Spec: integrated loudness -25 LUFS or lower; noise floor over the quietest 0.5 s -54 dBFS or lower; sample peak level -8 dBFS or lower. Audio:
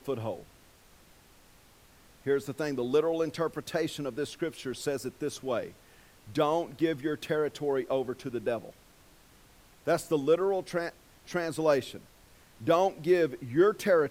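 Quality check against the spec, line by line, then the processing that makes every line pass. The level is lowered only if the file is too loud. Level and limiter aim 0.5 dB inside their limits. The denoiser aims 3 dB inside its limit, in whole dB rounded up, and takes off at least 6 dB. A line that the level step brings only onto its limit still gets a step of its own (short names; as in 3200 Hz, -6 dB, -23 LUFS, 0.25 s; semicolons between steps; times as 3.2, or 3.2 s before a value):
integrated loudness -30.5 LUFS: OK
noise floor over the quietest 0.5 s -58 dBFS: OK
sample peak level -12.0 dBFS: OK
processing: none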